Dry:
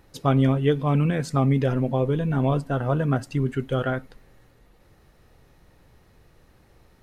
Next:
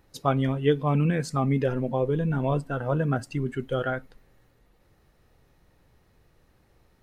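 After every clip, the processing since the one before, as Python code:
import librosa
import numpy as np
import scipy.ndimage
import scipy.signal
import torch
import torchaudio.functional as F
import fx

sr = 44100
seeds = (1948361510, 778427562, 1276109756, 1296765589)

y = fx.noise_reduce_blind(x, sr, reduce_db=6)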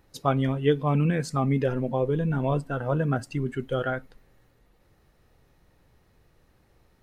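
y = x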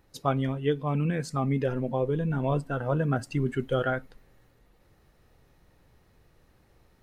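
y = fx.rider(x, sr, range_db=10, speed_s=0.5)
y = y * librosa.db_to_amplitude(-2.0)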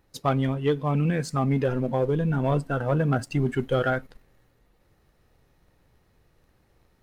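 y = fx.leveller(x, sr, passes=1)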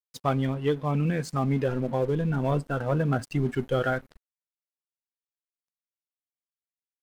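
y = np.sign(x) * np.maximum(np.abs(x) - 10.0 ** (-48.0 / 20.0), 0.0)
y = y * librosa.db_to_amplitude(-1.5)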